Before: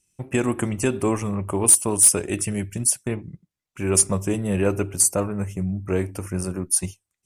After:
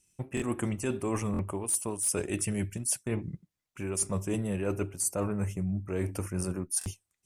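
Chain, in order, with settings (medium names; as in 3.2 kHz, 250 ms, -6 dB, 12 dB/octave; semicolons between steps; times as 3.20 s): reverse; compression 12:1, threshold -27 dBFS, peak gain reduction 17 dB; reverse; buffer glitch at 0.35/1.32/6.79 s, samples 1024, times 2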